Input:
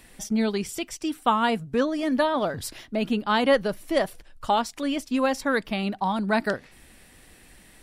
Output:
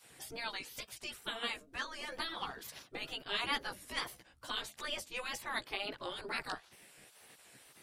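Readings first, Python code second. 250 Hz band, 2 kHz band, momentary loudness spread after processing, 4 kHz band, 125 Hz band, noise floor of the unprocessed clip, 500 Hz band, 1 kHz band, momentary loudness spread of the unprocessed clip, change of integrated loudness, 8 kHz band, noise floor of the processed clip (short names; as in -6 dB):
-26.5 dB, -9.5 dB, 20 LU, -5.0 dB, -21.5 dB, -53 dBFS, -21.5 dB, -17.0 dB, 8 LU, -14.5 dB, -10.0 dB, -64 dBFS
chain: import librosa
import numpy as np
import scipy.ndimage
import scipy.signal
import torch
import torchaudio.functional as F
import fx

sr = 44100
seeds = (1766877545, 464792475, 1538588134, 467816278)

y = fx.chorus_voices(x, sr, voices=2, hz=0.41, base_ms=15, depth_ms=1.1, mix_pct=45)
y = fx.wow_flutter(y, sr, seeds[0], rate_hz=2.1, depth_cents=90.0)
y = fx.spec_gate(y, sr, threshold_db=-15, keep='weak')
y = y * librosa.db_to_amplitude(-1.0)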